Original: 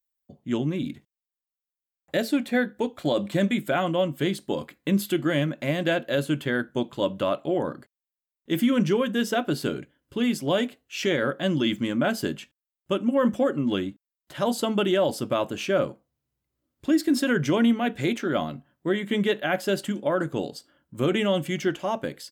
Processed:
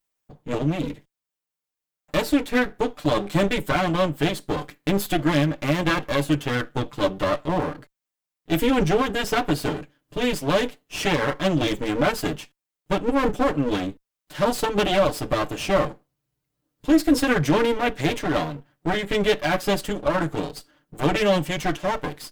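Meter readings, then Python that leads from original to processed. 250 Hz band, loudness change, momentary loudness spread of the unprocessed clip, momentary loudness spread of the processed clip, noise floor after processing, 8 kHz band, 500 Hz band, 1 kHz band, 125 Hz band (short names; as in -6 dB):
+1.0 dB, +2.5 dB, 9 LU, 9 LU, under -85 dBFS, +4.0 dB, +2.0 dB, +6.0 dB, +4.0 dB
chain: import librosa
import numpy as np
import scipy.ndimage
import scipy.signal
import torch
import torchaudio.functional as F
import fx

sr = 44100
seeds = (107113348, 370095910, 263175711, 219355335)

y = fx.lower_of_two(x, sr, delay_ms=6.7)
y = F.gain(torch.from_numpy(y), 4.5).numpy()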